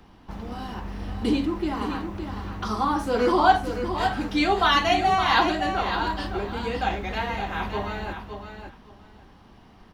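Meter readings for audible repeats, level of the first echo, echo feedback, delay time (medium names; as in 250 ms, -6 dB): 2, -8.0 dB, 17%, 564 ms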